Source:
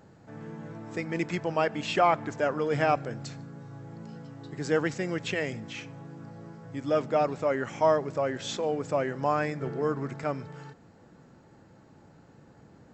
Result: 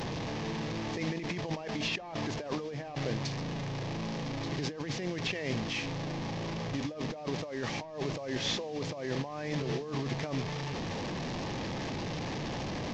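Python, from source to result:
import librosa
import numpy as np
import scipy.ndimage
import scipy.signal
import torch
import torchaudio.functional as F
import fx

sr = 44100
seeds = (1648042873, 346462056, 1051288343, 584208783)

y = fx.delta_mod(x, sr, bps=32000, step_db=-34.0)
y = fx.peak_eq(y, sr, hz=1400.0, db=-11.5, octaves=0.25)
y = fx.over_compress(y, sr, threshold_db=-35.0, ratio=-1.0)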